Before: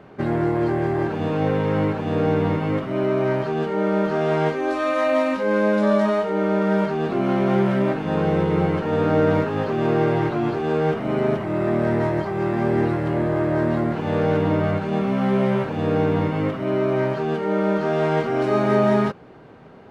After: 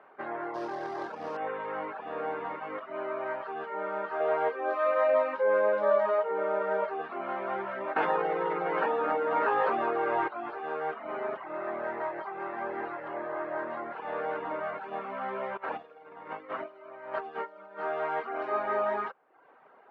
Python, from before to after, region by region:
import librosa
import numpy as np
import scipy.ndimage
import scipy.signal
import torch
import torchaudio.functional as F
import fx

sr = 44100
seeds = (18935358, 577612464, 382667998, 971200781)

y = fx.chain(x, sr, fx.tilt_eq(slope=-1.5),
    fx.sample_hold(seeds[0], rate_hz=5400.0, jitter_pct=20), at=(0.54, 1.37))
y = fx.chain(y, sr, fx.peak_eq(hz=510.0, db=10.0, octaves=0.63),
    fx.echo_single(ms=436, db=-23.0), at=(4.2, 7.02))
y = fx.chain(y, sr, fx.doubler(ms=17.0, db=-5.0),
    fx.env_flatten(amount_pct=100), at=(7.96, 10.28))
y = fx.chain(y, sr, fx.over_compress(threshold_db=-26.0, ratio=-0.5),
    fx.echo_wet_highpass(ms=82, feedback_pct=69, hz=3600.0, wet_db=-7), at=(15.57, 17.8))
y = scipy.signal.sosfilt(scipy.signal.butter(2, 1400.0, 'lowpass', fs=sr, output='sos'), y)
y = fx.dereverb_blind(y, sr, rt60_s=0.68)
y = scipy.signal.sosfilt(scipy.signal.butter(2, 930.0, 'highpass', fs=sr, output='sos'), y)